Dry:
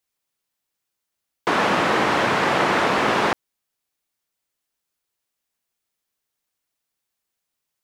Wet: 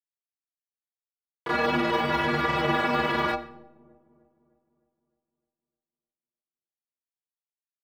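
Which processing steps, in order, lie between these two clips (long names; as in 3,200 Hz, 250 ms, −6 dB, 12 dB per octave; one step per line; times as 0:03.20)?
low-pass filter 4,800 Hz 24 dB per octave
low-shelf EQ 100 Hz +10.5 dB
centre clipping without the shift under −36 dBFS
stiff-string resonator 71 Hz, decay 0.68 s, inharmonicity 0.03
granular cloud 100 ms, grains 20 per second, spray 21 ms, pitch spread up and down by 0 semitones
delay with a low-pass on its return 305 ms, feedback 51%, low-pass 520 Hz, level −22 dB
convolution reverb RT60 0.65 s, pre-delay 45 ms, DRR 17.5 dB
level +7 dB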